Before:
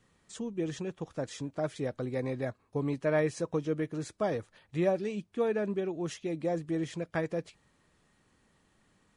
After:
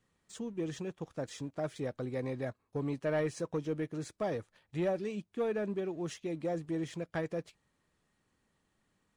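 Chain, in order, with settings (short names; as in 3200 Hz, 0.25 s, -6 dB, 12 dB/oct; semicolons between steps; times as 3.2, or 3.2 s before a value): sample leveller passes 1; gain -6.5 dB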